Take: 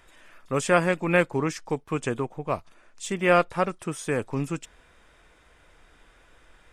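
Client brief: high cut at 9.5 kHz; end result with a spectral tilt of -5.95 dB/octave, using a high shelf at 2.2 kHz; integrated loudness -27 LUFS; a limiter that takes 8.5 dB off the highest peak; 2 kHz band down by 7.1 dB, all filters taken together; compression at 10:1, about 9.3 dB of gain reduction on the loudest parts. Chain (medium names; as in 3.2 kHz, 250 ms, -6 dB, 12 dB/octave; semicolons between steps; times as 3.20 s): low-pass 9.5 kHz; peaking EQ 2 kHz -6.5 dB; treble shelf 2.2 kHz -5.5 dB; compression 10:1, threshold -25 dBFS; trim +9.5 dB; peak limiter -15.5 dBFS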